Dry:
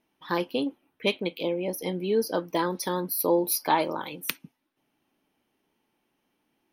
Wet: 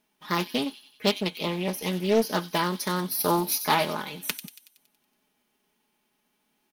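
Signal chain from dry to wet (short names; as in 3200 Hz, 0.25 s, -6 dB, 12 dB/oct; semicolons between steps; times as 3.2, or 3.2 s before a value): spectral whitening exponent 0.6; comb 4.8 ms, depth 57%; thin delay 93 ms, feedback 53%, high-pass 3300 Hz, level -9.5 dB; Doppler distortion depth 0.34 ms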